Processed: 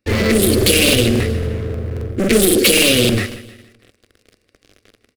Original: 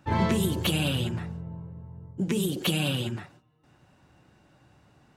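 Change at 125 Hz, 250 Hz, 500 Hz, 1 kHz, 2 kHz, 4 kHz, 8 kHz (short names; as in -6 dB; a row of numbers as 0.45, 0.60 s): +9.0, +12.0, +17.5, +4.0, +16.5, +15.0, +20.5 dB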